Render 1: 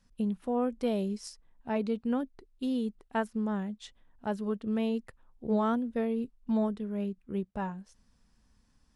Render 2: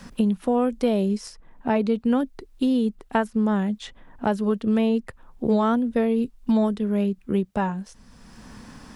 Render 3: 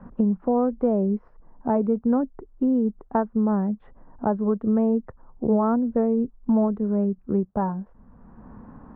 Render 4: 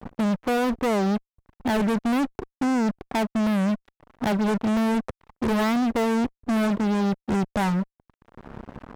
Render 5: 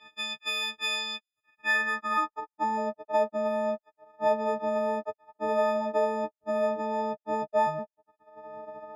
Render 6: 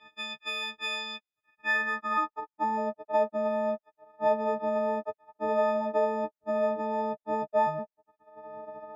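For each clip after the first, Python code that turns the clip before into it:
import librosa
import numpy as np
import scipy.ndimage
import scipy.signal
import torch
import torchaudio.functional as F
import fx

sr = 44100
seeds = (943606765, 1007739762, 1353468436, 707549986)

y1 = fx.band_squash(x, sr, depth_pct=70)
y1 = y1 * librosa.db_to_amplitude(9.0)
y2 = scipy.signal.sosfilt(scipy.signal.butter(4, 1200.0, 'lowpass', fs=sr, output='sos'), y1)
y3 = fx.fuzz(y2, sr, gain_db=33.0, gate_db=-42.0)
y3 = y3 * librosa.db_to_amplitude(-7.5)
y4 = fx.freq_snap(y3, sr, grid_st=6)
y4 = fx.filter_sweep_bandpass(y4, sr, from_hz=3100.0, to_hz=680.0, start_s=1.26, end_s=2.77, q=3.7)
y4 = y4 * librosa.db_to_amplitude(5.0)
y5 = fx.high_shelf(y4, sr, hz=4500.0, db=-11.0)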